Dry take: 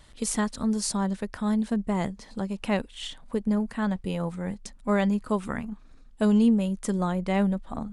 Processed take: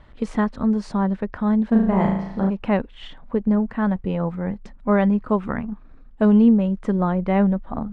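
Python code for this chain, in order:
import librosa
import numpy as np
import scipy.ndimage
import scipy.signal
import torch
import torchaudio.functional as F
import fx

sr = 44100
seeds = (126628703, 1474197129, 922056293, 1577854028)

y = scipy.signal.sosfilt(scipy.signal.butter(2, 1800.0, 'lowpass', fs=sr, output='sos'), x)
y = fx.room_flutter(y, sr, wall_m=6.2, rt60_s=0.77, at=(1.71, 2.49), fade=0.02)
y = y * librosa.db_to_amplitude(6.0)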